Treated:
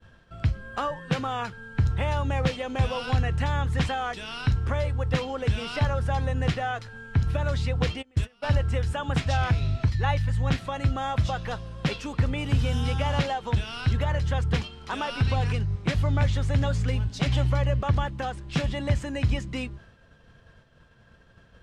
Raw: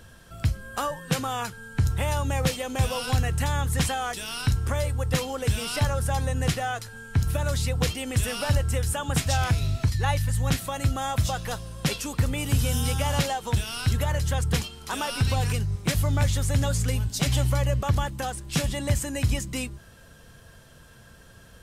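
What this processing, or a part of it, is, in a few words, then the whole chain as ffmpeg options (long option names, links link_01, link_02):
hearing-loss simulation: -filter_complex "[0:a]lowpass=3400,agate=range=-33dB:threshold=-45dB:ratio=3:detection=peak,asplit=3[link_01][link_02][link_03];[link_01]afade=type=out:start_time=8.01:duration=0.02[link_04];[link_02]agate=range=-28dB:threshold=-23dB:ratio=16:detection=peak,afade=type=in:start_time=8.01:duration=0.02,afade=type=out:start_time=8.42:duration=0.02[link_05];[link_03]afade=type=in:start_time=8.42:duration=0.02[link_06];[link_04][link_05][link_06]amix=inputs=3:normalize=0"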